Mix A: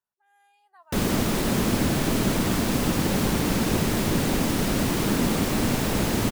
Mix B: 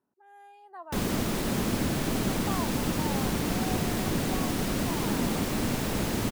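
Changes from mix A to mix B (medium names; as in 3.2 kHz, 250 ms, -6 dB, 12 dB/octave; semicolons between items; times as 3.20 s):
speech: remove amplifier tone stack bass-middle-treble 10-0-10; background -5.0 dB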